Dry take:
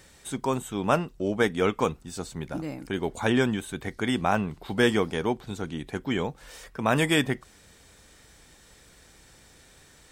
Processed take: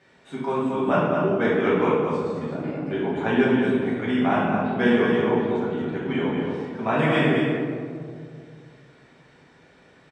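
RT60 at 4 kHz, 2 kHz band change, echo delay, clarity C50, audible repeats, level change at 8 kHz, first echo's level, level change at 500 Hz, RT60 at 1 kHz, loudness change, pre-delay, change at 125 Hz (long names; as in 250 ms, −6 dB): 0.90 s, +3.0 dB, 221 ms, −2.0 dB, 1, below −15 dB, −5.0 dB, +6.0 dB, 1.9 s, +4.5 dB, 4 ms, +3.5 dB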